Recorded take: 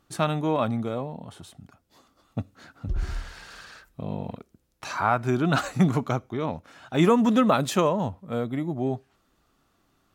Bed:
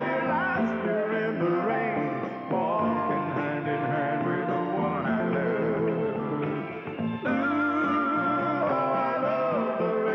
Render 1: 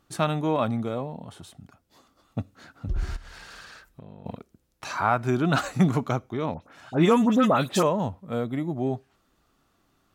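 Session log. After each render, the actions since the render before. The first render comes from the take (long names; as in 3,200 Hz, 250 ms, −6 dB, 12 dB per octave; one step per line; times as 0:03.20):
0:03.16–0:04.26: downward compressor 16 to 1, threshold −39 dBFS
0:06.54–0:07.83: all-pass dispersion highs, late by 78 ms, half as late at 2,100 Hz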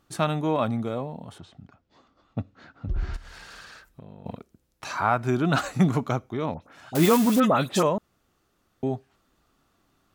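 0:01.38–0:03.14: Gaussian smoothing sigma 1.7 samples
0:06.95–0:07.40: spike at every zero crossing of −16 dBFS
0:07.98–0:08.83: fill with room tone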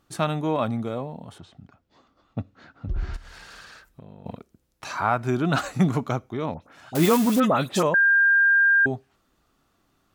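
0:07.94–0:08.86: beep over 1,600 Hz −14.5 dBFS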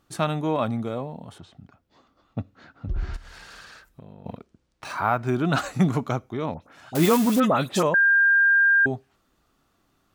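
0:04.12–0:05.41: linearly interpolated sample-rate reduction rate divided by 3×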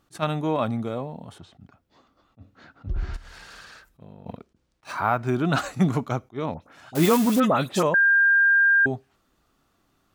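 level that may rise only so fast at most 410 dB per second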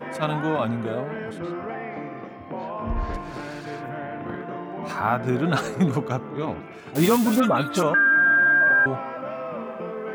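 mix in bed −6 dB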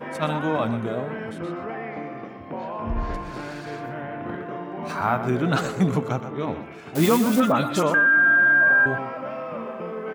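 single-tap delay 122 ms −11.5 dB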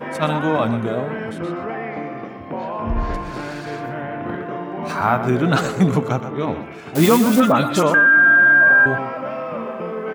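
level +5 dB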